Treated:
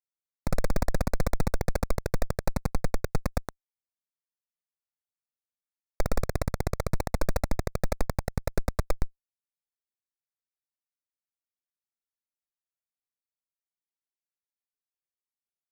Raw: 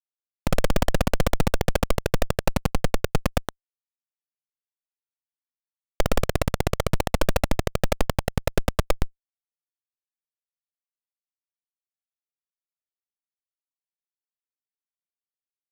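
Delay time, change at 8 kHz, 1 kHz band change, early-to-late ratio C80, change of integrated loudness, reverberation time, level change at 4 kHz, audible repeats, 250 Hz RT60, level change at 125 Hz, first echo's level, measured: no echo, -7.0 dB, -7.0 dB, no reverb, -6.0 dB, no reverb, -11.0 dB, no echo, no reverb, -4.5 dB, no echo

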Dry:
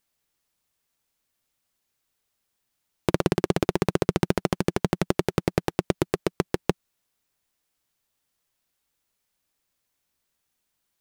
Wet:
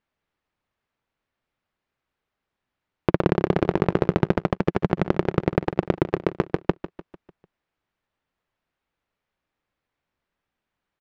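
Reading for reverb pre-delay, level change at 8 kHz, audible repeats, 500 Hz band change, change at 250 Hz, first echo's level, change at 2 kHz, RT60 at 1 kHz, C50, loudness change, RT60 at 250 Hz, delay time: no reverb, under -15 dB, 4, +2.5 dB, +2.5 dB, -13.0 dB, +1.0 dB, no reverb, no reverb, +2.5 dB, no reverb, 149 ms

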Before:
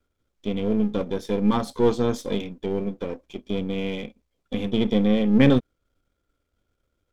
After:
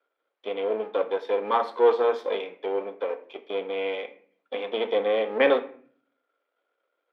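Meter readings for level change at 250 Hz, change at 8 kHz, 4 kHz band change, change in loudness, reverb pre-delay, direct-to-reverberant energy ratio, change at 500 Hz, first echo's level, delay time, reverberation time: -16.0 dB, no reading, -2.5 dB, -2.5 dB, 4 ms, 9.5 dB, +2.5 dB, no echo, no echo, 0.50 s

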